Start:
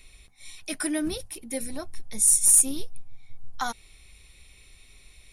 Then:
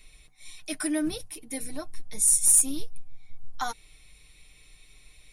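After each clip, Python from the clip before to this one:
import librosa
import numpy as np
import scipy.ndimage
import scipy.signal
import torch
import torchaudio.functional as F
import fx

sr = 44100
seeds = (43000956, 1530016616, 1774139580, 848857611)

y = x + 0.54 * np.pad(x, (int(6.6 * sr / 1000.0), 0))[:len(x)]
y = y * librosa.db_to_amplitude(-3.0)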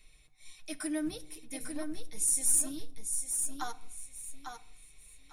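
y = fx.echo_feedback(x, sr, ms=849, feedback_pct=23, wet_db=-6.0)
y = fx.room_shoebox(y, sr, seeds[0], volume_m3=2400.0, walls='furnished', distance_m=0.52)
y = y * librosa.db_to_amplitude(-7.5)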